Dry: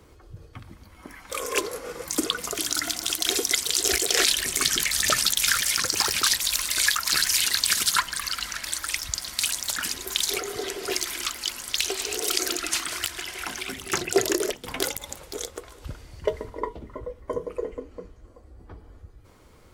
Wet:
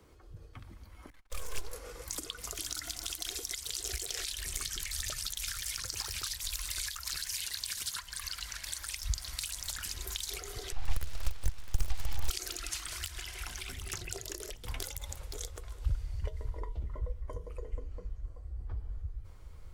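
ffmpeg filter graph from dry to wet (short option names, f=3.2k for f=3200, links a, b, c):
-filter_complex "[0:a]asettb=1/sr,asplit=3[a][b][c];[a]atrim=end=1.104[d];[b]atrim=start=1.1:end=1.73,asetpts=PTS-STARTPTS,afade=t=in:d=0.004:c=qsin,afade=t=out:st=0.626:d=0.004:c=qsin,agate=range=-28dB:threshold=-44dB:ratio=16:release=100:detection=peak,aeval=exprs='max(val(0),0)':c=same[e];[c]atrim=start=1.726[f];[d][e]acrossfade=d=0.004:c1=hsin:c2=qsin[g];[g][f]acrossfade=d=0.004:c1=qsin:c2=hsin,asettb=1/sr,asplit=3[h][i][j];[h]atrim=end=7.164[k];[i]atrim=start=7.16:end=9.01,asetpts=PTS-STARTPTS,afade=t=in:d=0.004:c=qsin,afade=t=out:st=1.846:d=0.004:c=qsin,lowshelf=f=77:g=-10.5,bandreject=f=1.3k:w=15[l];[j]atrim=start=9.006[m];[k][l]acrossfade=d=0.004:c1=hsin:c2=qsin[n];[n][m]acrossfade=d=0.004:c1=qsin:c2=hsin,asettb=1/sr,asplit=3[o][p][q];[o]atrim=end=10.724[r];[p]atrim=start=10.72:end=12.29,asetpts=PTS-STARTPTS,afade=t=in:d=0.004:c=qsin,afade=t=out:st=1.566:d=0.004:c=qsin,adynamicsmooth=sensitivity=2:basefreq=3k,aeval=exprs='abs(val(0))':c=same[s];[q]atrim=start=12.286[t];[r][s]acrossfade=d=0.004:c1=hsin:c2=qsin[u];[u][t]acrossfade=d=0.004:c1=qsin:c2=hsin,acompressor=threshold=-26dB:ratio=6,asubboost=boost=9.5:cutoff=78,acrossover=split=120|3000[v][w][x];[w]acompressor=threshold=-41dB:ratio=2[y];[v][y][x]amix=inputs=3:normalize=0,volume=-7dB"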